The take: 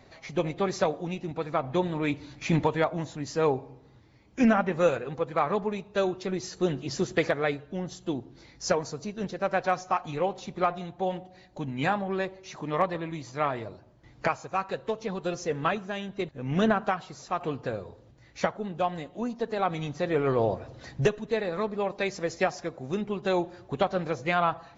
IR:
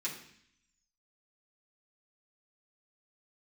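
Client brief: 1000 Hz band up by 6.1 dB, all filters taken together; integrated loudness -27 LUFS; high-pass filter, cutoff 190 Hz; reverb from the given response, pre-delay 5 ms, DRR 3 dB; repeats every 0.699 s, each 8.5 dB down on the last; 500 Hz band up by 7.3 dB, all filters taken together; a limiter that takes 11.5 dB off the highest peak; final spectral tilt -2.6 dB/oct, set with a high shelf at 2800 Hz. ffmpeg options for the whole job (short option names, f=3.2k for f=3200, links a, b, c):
-filter_complex "[0:a]highpass=190,equalizer=f=500:t=o:g=7.5,equalizer=f=1k:t=o:g=6,highshelf=f=2.8k:g=-5,alimiter=limit=-15.5dB:level=0:latency=1,aecho=1:1:699|1398|2097|2796:0.376|0.143|0.0543|0.0206,asplit=2[a][b];[1:a]atrim=start_sample=2205,adelay=5[c];[b][c]afir=irnorm=-1:irlink=0,volume=-5.5dB[d];[a][d]amix=inputs=2:normalize=0,volume=-0.5dB"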